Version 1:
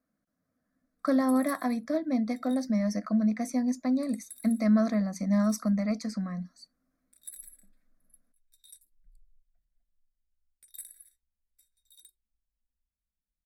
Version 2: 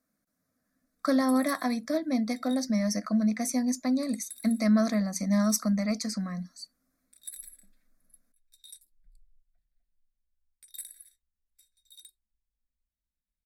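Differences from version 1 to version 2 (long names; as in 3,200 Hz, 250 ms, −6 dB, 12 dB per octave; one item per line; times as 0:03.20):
speech: add high-shelf EQ 3,000 Hz +12 dB
background: add parametric band 4,000 Hz +7.5 dB 2.3 octaves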